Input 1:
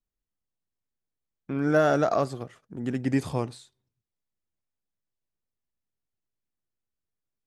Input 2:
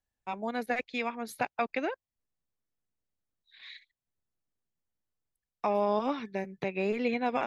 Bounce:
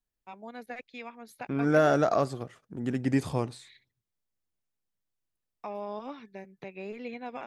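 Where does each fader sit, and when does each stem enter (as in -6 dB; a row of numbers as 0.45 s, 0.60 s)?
-1.0 dB, -9.5 dB; 0.00 s, 0.00 s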